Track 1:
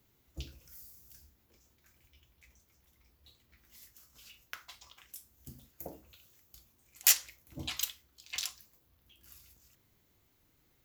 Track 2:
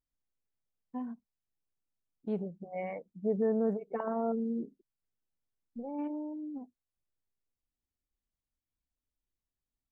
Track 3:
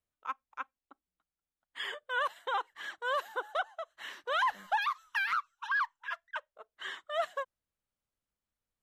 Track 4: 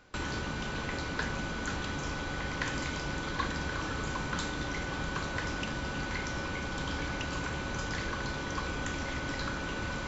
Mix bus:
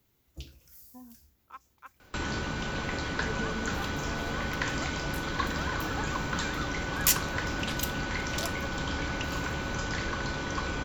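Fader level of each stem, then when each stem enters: −0.5, −11.5, −10.0, +2.5 decibels; 0.00, 0.00, 1.25, 2.00 seconds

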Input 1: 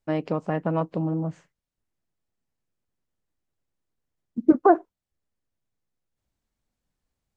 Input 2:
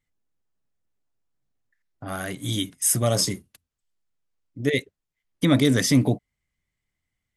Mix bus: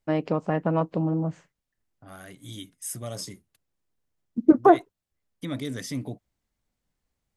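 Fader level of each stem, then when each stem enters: +1.0, −13.5 decibels; 0.00, 0.00 seconds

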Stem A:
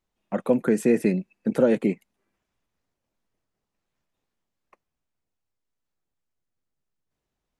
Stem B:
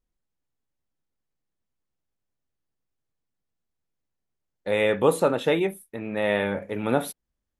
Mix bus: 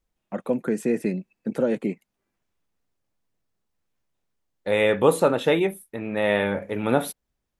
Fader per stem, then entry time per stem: −3.5, +2.0 decibels; 0.00, 0.00 seconds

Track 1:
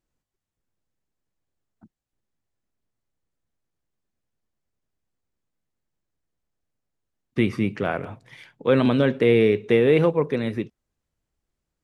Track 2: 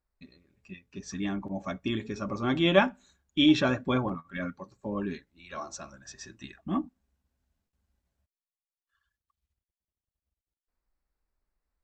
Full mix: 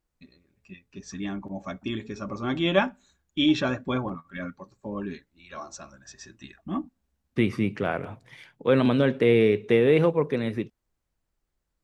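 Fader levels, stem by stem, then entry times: −2.0, −0.5 decibels; 0.00, 0.00 seconds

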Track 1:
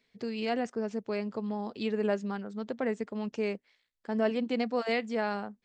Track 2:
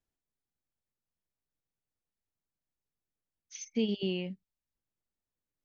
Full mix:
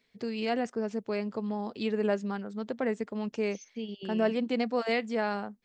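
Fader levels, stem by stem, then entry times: +1.0, −7.5 decibels; 0.00, 0.00 seconds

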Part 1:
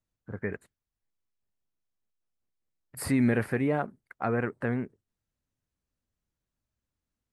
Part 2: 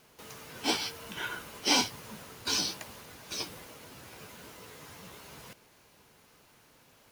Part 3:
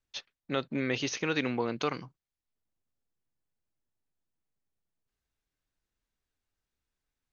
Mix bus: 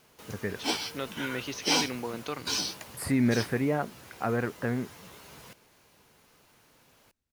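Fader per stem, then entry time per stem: −0.5, −0.5, −4.5 decibels; 0.00, 0.00, 0.45 seconds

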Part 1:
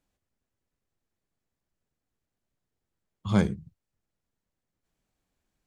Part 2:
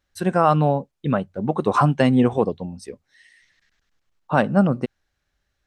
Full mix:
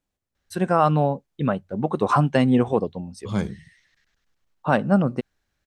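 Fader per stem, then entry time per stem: −2.0, −1.5 decibels; 0.00, 0.35 seconds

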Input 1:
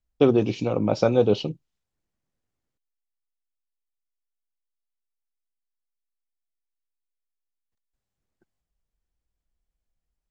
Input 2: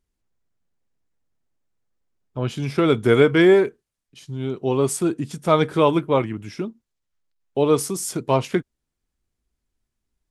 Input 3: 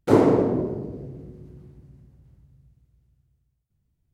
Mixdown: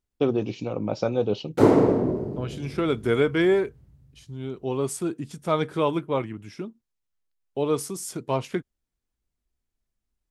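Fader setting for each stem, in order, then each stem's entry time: −5.0, −6.5, 0.0 decibels; 0.00, 0.00, 1.50 seconds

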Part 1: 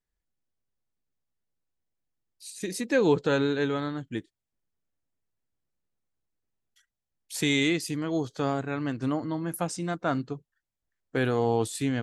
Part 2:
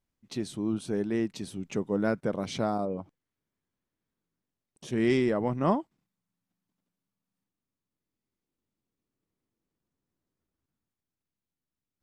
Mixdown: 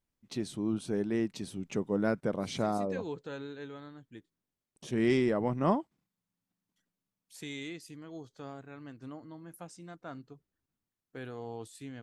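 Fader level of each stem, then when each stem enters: −16.5, −2.0 decibels; 0.00, 0.00 seconds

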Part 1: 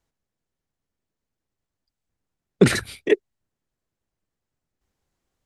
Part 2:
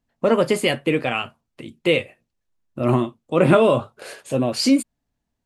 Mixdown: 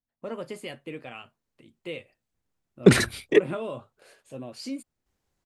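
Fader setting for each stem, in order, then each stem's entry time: 0.0, −18.0 decibels; 0.25, 0.00 seconds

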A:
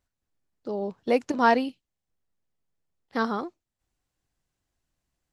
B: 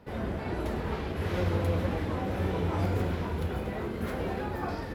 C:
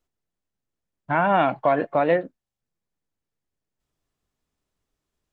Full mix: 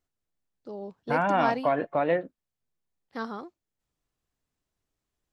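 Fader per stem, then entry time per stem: −8.0 dB, muted, −5.0 dB; 0.00 s, muted, 0.00 s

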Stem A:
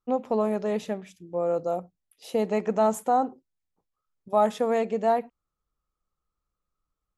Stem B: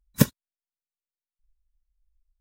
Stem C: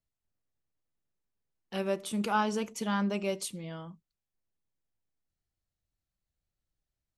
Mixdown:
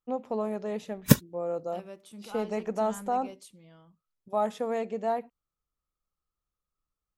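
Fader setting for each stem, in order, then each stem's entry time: −6.0, +0.5, −14.0 decibels; 0.00, 0.90, 0.00 seconds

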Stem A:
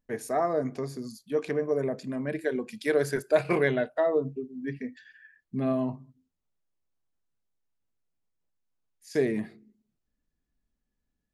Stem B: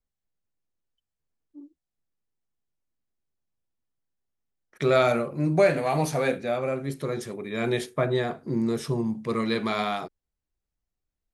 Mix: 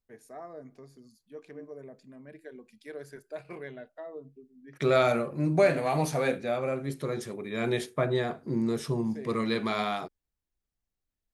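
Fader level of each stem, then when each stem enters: −17.0, −2.5 decibels; 0.00, 0.00 seconds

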